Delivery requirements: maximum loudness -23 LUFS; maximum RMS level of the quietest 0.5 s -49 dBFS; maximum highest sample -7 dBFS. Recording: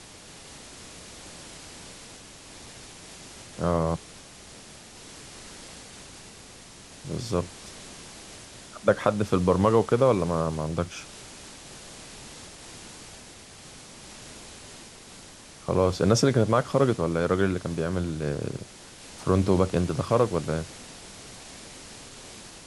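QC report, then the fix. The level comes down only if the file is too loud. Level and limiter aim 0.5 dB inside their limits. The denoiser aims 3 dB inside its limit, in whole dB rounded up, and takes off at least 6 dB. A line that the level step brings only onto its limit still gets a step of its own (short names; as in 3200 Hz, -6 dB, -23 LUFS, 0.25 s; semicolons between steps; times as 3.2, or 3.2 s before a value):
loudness -25.5 LUFS: OK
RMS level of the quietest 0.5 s -47 dBFS: fail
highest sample -5.0 dBFS: fail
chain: denoiser 6 dB, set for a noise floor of -47 dBFS; limiter -7.5 dBFS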